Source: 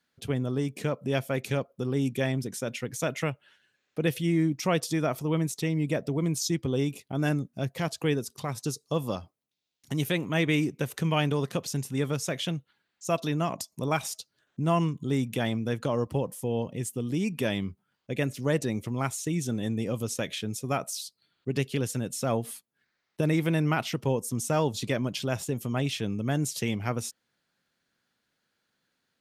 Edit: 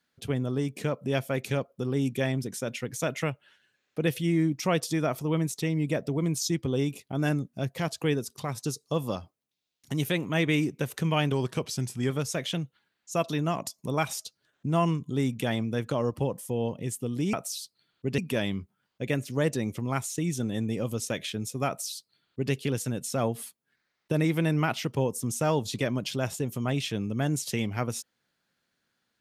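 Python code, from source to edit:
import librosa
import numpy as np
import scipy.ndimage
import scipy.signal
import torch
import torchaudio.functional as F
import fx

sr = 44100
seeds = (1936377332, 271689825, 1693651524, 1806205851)

y = fx.edit(x, sr, fx.speed_span(start_s=11.32, length_s=0.72, speed=0.92),
    fx.duplicate(start_s=20.76, length_s=0.85, to_s=17.27), tone=tone)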